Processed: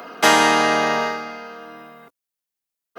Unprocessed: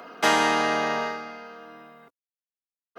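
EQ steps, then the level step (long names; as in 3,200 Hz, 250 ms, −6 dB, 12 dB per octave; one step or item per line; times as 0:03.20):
high-shelf EQ 7,700 Hz +6.5 dB
+6.0 dB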